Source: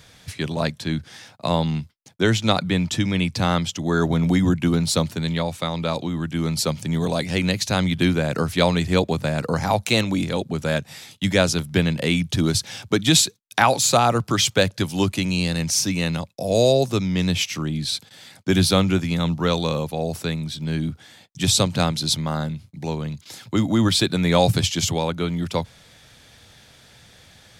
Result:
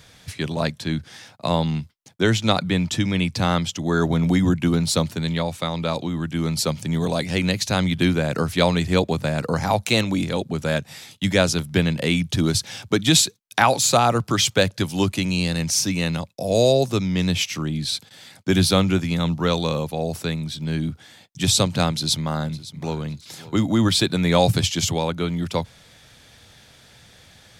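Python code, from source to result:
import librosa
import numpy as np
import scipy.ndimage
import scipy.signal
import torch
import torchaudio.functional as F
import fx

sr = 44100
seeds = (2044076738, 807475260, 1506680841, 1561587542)

y = fx.echo_throw(x, sr, start_s=21.89, length_s=1.1, ms=560, feedback_pct=25, wet_db=-17.0)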